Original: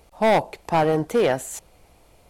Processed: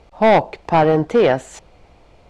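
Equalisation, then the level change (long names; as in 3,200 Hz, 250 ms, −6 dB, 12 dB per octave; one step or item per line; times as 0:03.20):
high-frequency loss of the air 130 metres
+6.0 dB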